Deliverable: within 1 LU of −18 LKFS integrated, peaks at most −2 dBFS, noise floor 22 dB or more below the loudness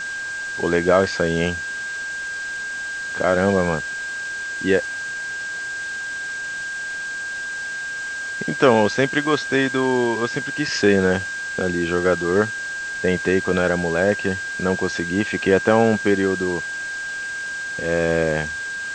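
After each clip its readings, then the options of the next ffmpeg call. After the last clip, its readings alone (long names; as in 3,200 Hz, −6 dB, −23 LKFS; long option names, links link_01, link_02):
interfering tone 1,600 Hz; level of the tone −26 dBFS; background noise floor −29 dBFS; target noise floor −44 dBFS; integrated loudness −21.5 LKFS; sample peak −1.5 dBFS; target loudness −18.0 LKFS
→ -af "bandreject=frequency=1600:width=30"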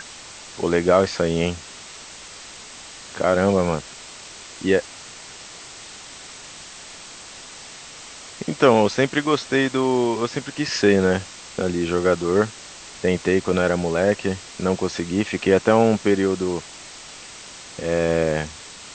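interfering tone none found; background noise floor −40 dBFS; target noise floor −43 dBFS
→ -af "afftdn=noise_reduction=6:noise_floor=-40"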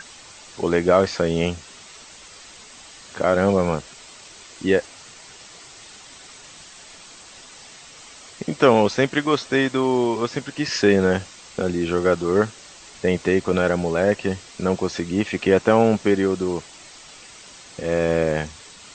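background noise floor −44 dBFS; integrated loudness −21.0 LKFS; sample peak −2.5 dBFS; target loudness −18.0 LKFS
→ -af "volume=3dB,alimiter=limit=-2dB:level=0:latency=1"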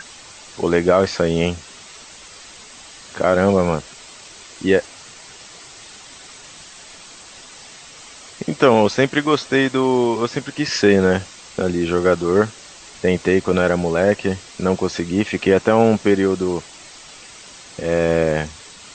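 integrated loudness −18.5 LKFS; sample peak −2.0 dBFS; background noise floor −41 dBFS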